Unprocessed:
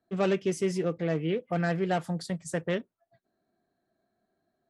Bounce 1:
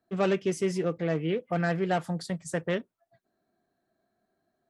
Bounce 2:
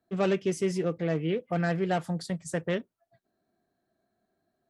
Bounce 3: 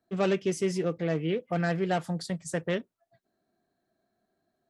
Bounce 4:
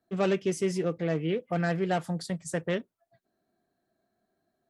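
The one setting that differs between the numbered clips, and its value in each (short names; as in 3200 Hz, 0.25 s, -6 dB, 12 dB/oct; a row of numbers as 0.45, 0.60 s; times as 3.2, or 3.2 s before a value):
bell, frequency: 1200, 71, 5100, 14000 Hz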